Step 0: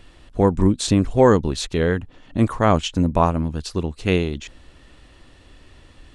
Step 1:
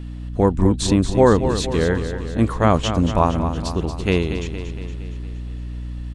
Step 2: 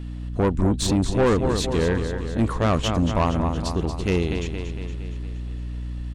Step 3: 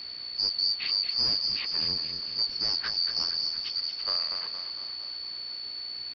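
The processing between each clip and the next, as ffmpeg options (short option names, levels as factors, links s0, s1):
-filter_complex "[0:a]aeval=exprs='val(0)+0.0316*(sin(2*PI*60*n/s)+sin(2*PI*2*60*n/s)/2+sin(2*PI*3*60*n/s)/3+sin(2*PI*4*60*n/s)/4+sin(2*PI*5*60*n/s)/5)':c=same,asplit=2[s0][s1];[s1]aecho=0:1:232|464|696|928|1160|1392|1624:0.335|0.191|0.109|0.062|0.0354|0.0202|0.0115[s2];[s0][s2]amix=inputs=2:normalize=0"
-af "aeval=exprs='(tanh(5.01*val(0)+0.3)-tanh(0.3))/5.01':c=same"
-af "afftfilt=real='real(if(lt(b,272),68*(eq(floor(b/68),0)*1+eq(floor(b/68),1)*2+eq(floor(b/68),2)*3+eq(floor(b/68),3)*0)+mod(b,68),b),0)':imag='imag(if(lt(b,272),68*(eq(floor(b/68),0)*1+eq(floor(b/68),1)*2+eq(floor(b/68),2)*3+eq(floor(b/68),3)*0)+mod(b,68),b),0)':win_size=2048:overlap=0.75,aresample=11025,acrusher=bits=6:mix=0:aa=0.000001,aresample=44100,volume=0.422"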